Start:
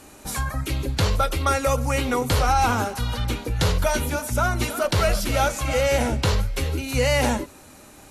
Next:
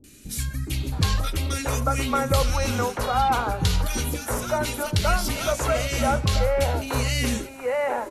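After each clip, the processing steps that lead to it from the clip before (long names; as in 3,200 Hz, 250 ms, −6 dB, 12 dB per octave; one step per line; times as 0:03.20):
mains-hum notches 60/120 Hz
three-band delay without the direct sound lows, highs, mids 40/670 ms, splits 370/1,900 Hz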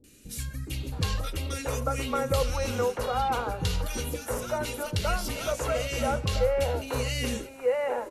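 hollow resonant body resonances 490/2,800 Hz, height 9 dB, ringing for 40 ms
level −6.5 dB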